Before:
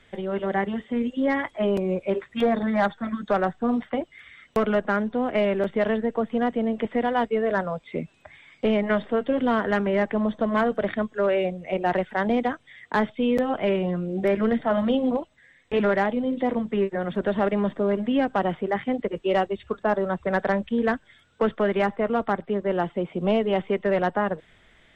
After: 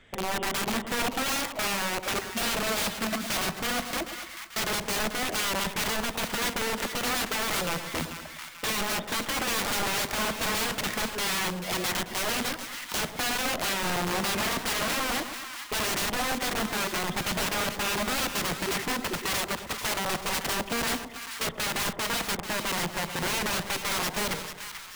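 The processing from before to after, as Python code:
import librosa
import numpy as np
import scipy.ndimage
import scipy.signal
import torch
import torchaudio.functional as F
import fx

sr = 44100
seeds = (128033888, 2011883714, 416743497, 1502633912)

p1 = (np.mod(10.0 ** (24.0 / 20.0) * x + 1.0, 2.0) - 1.0) / 10.0 ** (24.0 / 20.0)
y = p1 + fx.echo_split(p1, sr, split_hz=1000.0, low_ms=110, high_ms=439, feedback_pct=52, wet_db=-9, dry=0)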